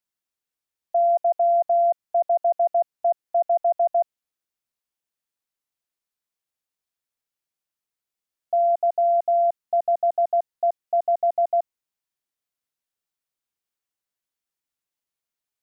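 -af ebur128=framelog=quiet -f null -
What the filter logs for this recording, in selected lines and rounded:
Integrated loudness:
  I:         -22.4 LUFS
  Threshold: -32.4 LUFS
Loudness range:
  LRA:         8.4 LU
  Threshold: -44.8 LUFS
  LRA low:   -30.5 LUFS
  LRA high:  -22.1 LUFS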